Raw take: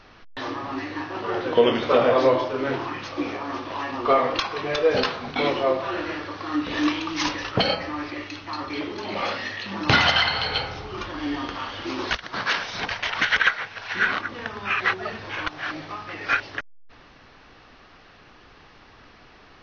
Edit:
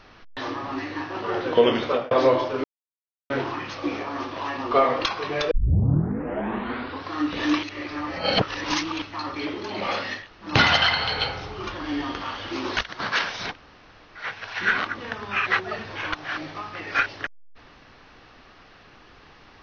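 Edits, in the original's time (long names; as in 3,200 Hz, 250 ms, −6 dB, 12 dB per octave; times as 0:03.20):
0:01.81–0:02.11: fade out
0:02.64: splice in silence 0.66 s
0:04.85: tape start 1.61 s
0:06.97–0:08.36: reverse
0:09.55–0:09.82: fill with room tone, crossfade 0.16 s
0:12.85–0:13.54: fill with room tone, crossfade 0.10 s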